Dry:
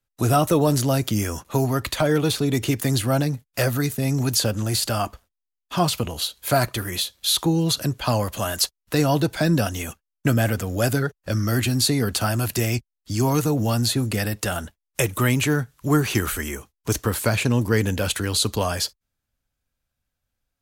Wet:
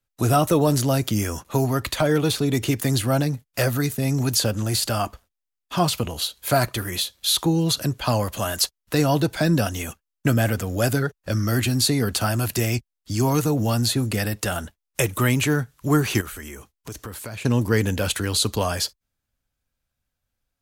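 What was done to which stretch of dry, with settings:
0:16.21–0:17.45: downward compressor 3 to 1, threshold −35 dBFS

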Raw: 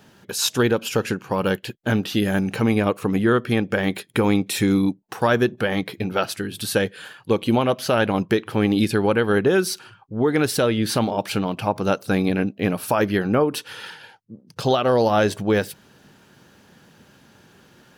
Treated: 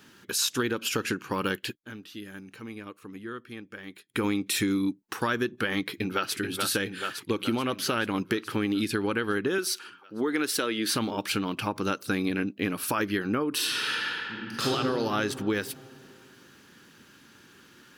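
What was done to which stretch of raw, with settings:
0:01.69–0:04.25: duck −17.5 dB, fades 0.16 s
0:05.88–0:06.36: delay throw 430 ms, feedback 70%, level −6 dB
0:09.58–0:10.94: high-pass filter 270 Hz
0:13.54–0:14.68: thrown reverb, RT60 2.5 s, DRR −8.5 dB
whole clip: drawn EQ curve 180 Hz 0 dB, 300 Hz +8 dB, 690 Hz −5 dB, 1,200 Hz +8 dB; downward compressor, threshold −16 dBFS; level −7.5 dB

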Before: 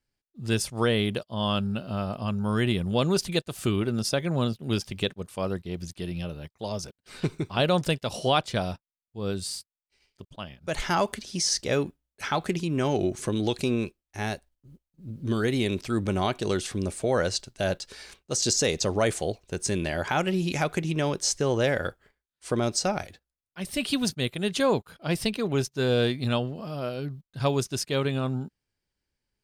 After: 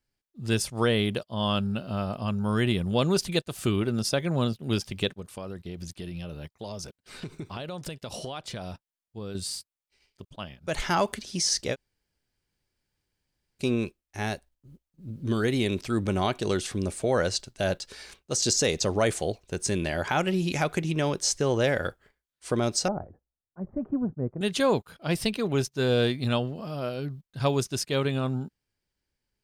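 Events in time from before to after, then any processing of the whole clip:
0:05.16–0:09.35: downward compressor 10 to 1, threshold −32 dBFS
0:11.73–0:13.62: fill with room tone, crossfade 0.06 s
0:22.88–0:24.41: Bessel low-pass filter 720 Hz, order 8

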